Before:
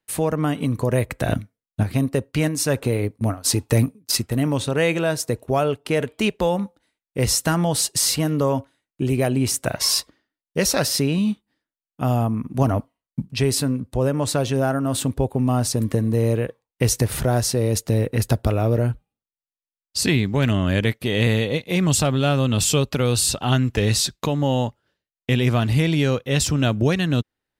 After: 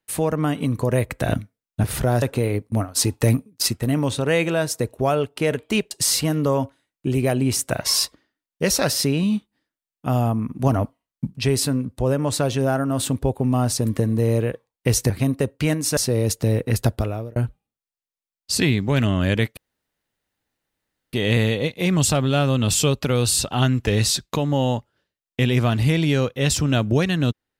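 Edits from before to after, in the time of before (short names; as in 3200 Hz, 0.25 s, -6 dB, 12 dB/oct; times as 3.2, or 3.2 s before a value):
1.84–2.71 swap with 17.05–17.43
6.4–7.86 cut
18.34–18.82 fade out
21.03 insert room tone 1.56 s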